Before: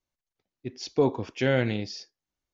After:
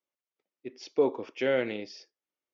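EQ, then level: cabinet simulation 420–6400 Hz, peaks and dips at 730 Hz -7 dB, 1 kHz -5 dB, 1.6 kHz -6 dB, 4.1 kHz -6 dB; treble shelf 3.5 kHz -12 dB; +2.5 dB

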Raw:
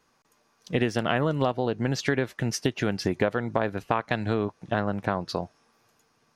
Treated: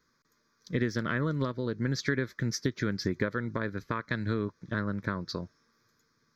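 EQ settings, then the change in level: static phaser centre 2.8 kHz, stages 6; -2.0 dB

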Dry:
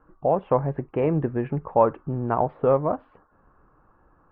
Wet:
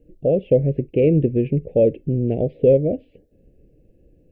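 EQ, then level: elliptic band-stop 520–2500 Hz, stop band 70 dB; +7.5 dB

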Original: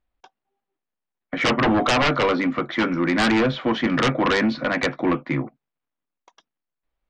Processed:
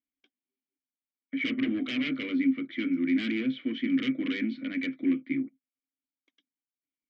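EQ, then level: vowel filter i; 0.0 dB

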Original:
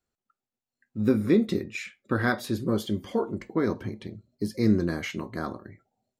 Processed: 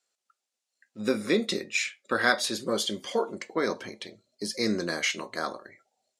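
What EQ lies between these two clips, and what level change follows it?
frequency weighting ITU-R 468; dynamic bell 190 Hz, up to +6 dB, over -49 dBFS, Q 1.4; peaking EQ 550 Hz +8.5 dB 1 oct; 0.0 dB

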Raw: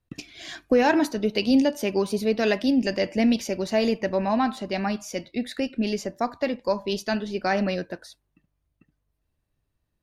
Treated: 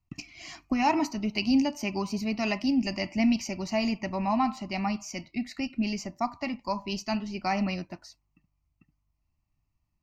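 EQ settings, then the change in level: treble shelf 10 kHz -4 dB; static phaser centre 2.4 kHz, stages 8; 0.0 dB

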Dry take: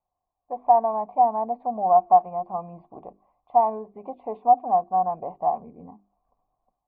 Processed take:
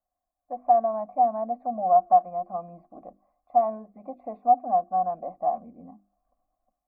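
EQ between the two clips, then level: static phaser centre 620 Hz, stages 8; 0.0 dB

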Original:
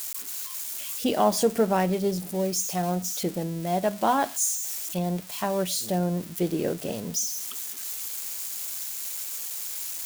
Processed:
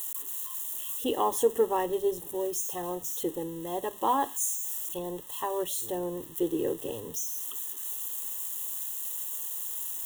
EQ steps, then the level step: Butterworth band-stop 2.3 kHz, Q 2.5; static phaser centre 980 Hz, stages 8; 0.0 dB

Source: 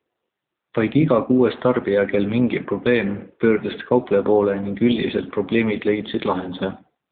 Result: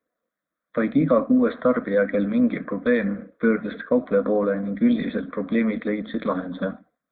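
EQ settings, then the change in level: static phaser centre 570 Hz, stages 8; 0.0 dB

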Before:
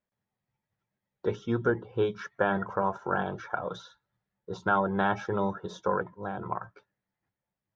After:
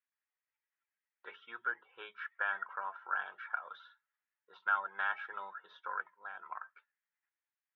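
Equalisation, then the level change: Butterworth band-pass 2.1 kHz, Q 1.1; distance through air 250 m; +1.0 dB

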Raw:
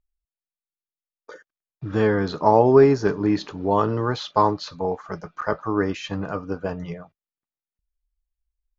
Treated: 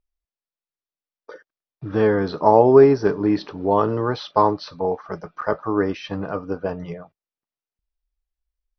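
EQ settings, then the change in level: brick-wall FIR low-pass 6.1 kHz; peaking EQ 520 Hz +5 dB 2.3 oct; -2.0 dB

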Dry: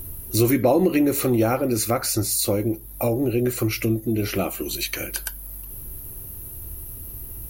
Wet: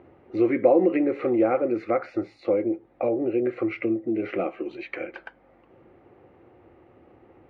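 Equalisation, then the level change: dynamic bell 840 Hz, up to -6 dB, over -39 dBFS, Q 1.7; cabinet simulation 210–2400 Hz, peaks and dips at 340 Hz +7 dB, 520 Hz +10 dB, 760 Hz +10 dB, 1.2 kHz +5 dB, 2.1 kHz +7 dB; -6.5 dB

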